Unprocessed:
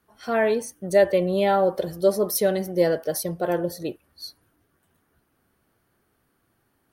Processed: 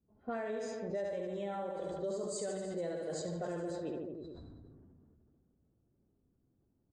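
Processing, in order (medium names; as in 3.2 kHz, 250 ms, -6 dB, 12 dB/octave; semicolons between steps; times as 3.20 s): knee-point frequency compression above 3.3 kHz 1.5:1; reverse bouncing-ball echo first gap 70 ms, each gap 1.1×, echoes 5; flange 0.89 Hz, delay 1.1 ms, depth 3.4 ms, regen -81%; level-controlled noise filter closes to 310 Hz, open at -22.5 dBFS; compression 12:1, threshold -35 dBFS, peak gain reduction 21 dB; dynamic bell 2.5 kHz, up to -4 dB, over -56 dBFS, Q 1.2; decay stretcher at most 22 dB/s; trim -1 dB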